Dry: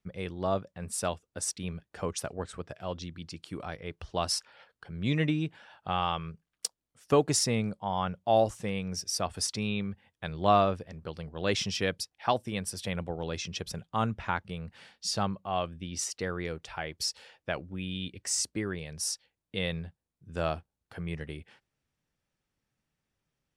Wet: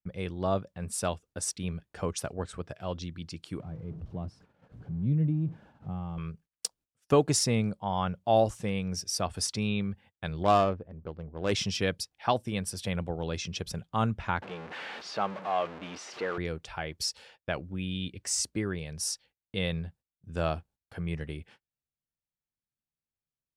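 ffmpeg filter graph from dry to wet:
ffmpeg -i in.wav -filter_complex "[0:a]asettb=1/sr,asplit=3[link_01][link_02][link_03];[link_01]atrim=end=3.604[link_04];[link_02]atrim=start=3.6:end=6.18,asetpts=PTS-STARTPTS,afade=type=in:duration=0.004:curve=qsin,afade=type=out:start_time=2.576:duration=0.004:curve=qsin,aeval=exprs='val(0)+0.5*0.0178*sgn(val(0))':channel_layout=same,bandpass=frequency=140:width_type=q:width=1.3[link_05];[link_03]atrim=start=6.176[link_06];[link_04][link_05]acrossfade=duration=0.004:curve1=hsin:curve2=qsin[link_07];[link_07][link_06]acrossfade=duration=0.004:curve1=qsin:curve2=hsin,asettb=1/sr,asplit=3[link_08][link_09][link_10];[link_08]atrim=end=10.434[link_11];[link_09]atrim=start=10.43:end=11.52,asetpts=PTS-STARTPTS,afade=type=in:duration=0.004:curve=qsin,afade=type=out:start_time=1.086:duration=0.004:curve=qsin,equalizer=frequency=130:width=0.98:gain=-4.5,adynamicsmooth=sensitivity=1.5:basefreq=920[link_12];[link_10]atrim=start=11.516[link_13];[link_11][link_12]acrossfade=duration=0.004:curve1=hsin:curve2=qsin[link_14];[link_14][link_13]acrossfade=duration=0.004:curve1=qsin:curve2=hsin,asettb=1/sr,asplit=3[link_15][link_16][link_17];[link_15]atrim=end=14.424[link_18];[link_16]atrim=start=14.42:end=16.38,asetpts=PTS-STARTPTS,afade=type=in:duration=0.004:curve=qsin,afade=type=out:start_time=1.956:duration=0.004:curve=qsin,aeval=exprs='val(0)+0.5*0.0266*sgn(val(0))':channel_layout=same,highpass=380,lowpass=2500[link_19];[link_17]atrim=start=16.376[link_20];[link_18][link_19]acrossfade=duration=0.004:curve1=hsin:curve2=qsin[link_21];[link_21][link_20]acrossfade=duration=0.004:curve1=qsin:curve2=hsin,bandreject=frequency=1900:width=29,agate=range=-19dB:threshold=-56dB:ratio=16:detection=peak,lowshelf=frequency=220:gain=4" out.wav

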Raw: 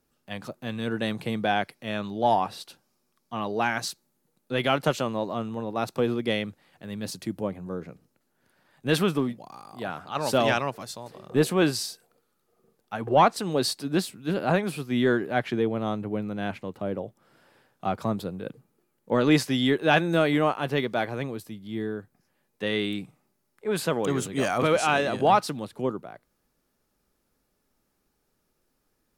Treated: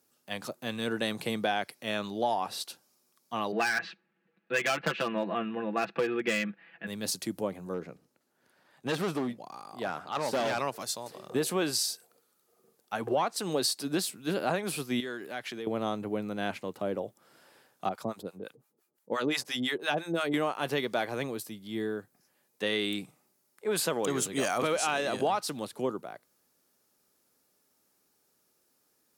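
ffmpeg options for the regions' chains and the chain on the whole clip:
ffmpeg -i in.wav -filter_complex "[0:a]asettb=1/sr,asplit=3[link_01][link_02][link_03];[link_01]atrim=end=3.524[link_04];[link_02]atrim=start=3.52:end=6.87,asetpts=PTS-STARTPTS,afade=type=in:duration=0.004:curve=qsin,afade=type=out:start_time=3.346:duration=0.004:curve=qsin,highpass=190,equalizer=frequency=200:width_type=q:width=4:gain=9,equalizer=frequency=310:width_type=q:width=4:gain=-3,equalizer=frequency=560:width_type=q:width=4:gain=-4,equalizer=frequency=940:width_type=q:width=4:gain=-5,equalizer=frequency=1700:width_type=q:width=4:gain=10,equalizer=frequency=2600:width_type=q:width=4:gain=8,lowpass=frequency=2700:width=0.5412,lowpass=frequency=2700:width=1.3066,asoftclip=type=hard:threshold=-19dB,aecho=1:1:6:0.77,atrim=end_sample=147735[link_05];[link_03]atrim=start=6.866[link_06];[link_04][link_05]acrossfade=duration=0.004:curve1=hsin:curve2=qsin[link_07];[link_07][link_06]acrossfade=duration=0.004:curve1=qsin:curve2=hsin,asettb=1/sr,asplit=3[link_08][link_09][link_10];[link_08]atrim=end=7.744[link_11];[link_09]atrim=start=7.74:end=10.59,asetpts=PTS-STARTPTS,afade=type=in:duration=0.004:curve=qsin,afade=type=out:start_time=2.846:duration=0.004:curve=qsin,deesser=0.75,asoftclip=type=hard:threshold=-23.5dB,aemphasis=mode=reproduction:type=cd[link_12];[link_10]atrim=start=10.586[link_13];[link_11][link_12]acrossfade=duration=0.004:curve1=hsin:curve2=qsin[link_14];[link_14][link_13]acrossfade=duration=0.004:curve1=qsin:curve2=hsin,asettb=1/sr,asplit=3[link_15][link_16][link_17];[link_15]atrim=end=15.004[link_18];[link_16]atrim=start=15:end=15.67,asetpts=PTS-STARTPTS,afade=type=in:duration=0.004:curve=qsin,afade=type=out:start_time=0.666:duration=0.004:curve=qsin,highpass=frequency=240:poles=1,equalizer=frequency=550:width=0.39:gain=-6.5,acompressor=threshold=-35dB:ratio=2.5:attack=3.2:release=140:knee=1:detection=peak[link_19];[link_17]atrim=start=15.666[link_20];[link_18][link_19]acrossfade=duration=0.004:curve1=hsin:curve2=qsin[link_21];[link_21][link_20]acrossfade=duration=0.004:curve1=qsin:curve2=hsin,asettb=1/sr,asplit=3[link_22][link_23][link_24];[link_22]atrim=end=17.894[link_25];[link_23]atrim=start=17.89:end=20.34,asetpts=PTS-STARTPTS,afade=type=in:duration=0.004:curve=qsin,afade=type=out:start_time=2.446:duration=0.004:curve=qsin,acrossover=split=780[link_26][link_27];[link_26]aeval=exprs='val(0)*(1-1/2+1/2*cos(2*PI*5.8*n/s))':channel_layout=same[link_28];[link_27]aeval=exprs='val(0)*(1-1/2-1/2*cos(2*PI*5.8*n/s))':channel_layout=same[link_29];[link_28][link_29]amix=inputs=2:normalize=0,lowshelf=frequency=120:gain=-6[link_30];[link_24]atrim=start=20.336[link_31];[link_25][link_30]acrossfade=duration=0.004:curve1=hsin:curve2=qsin[link_32];[link_32][link_31]acrossfade=duration=0.004:curve1=qsin:curve2=hsin,highpass=100,bass=frequency=250:gain=-6,treble=frequency=4000:gain=7,acompressor=threshold=-25dB:ratio=6" out.wav

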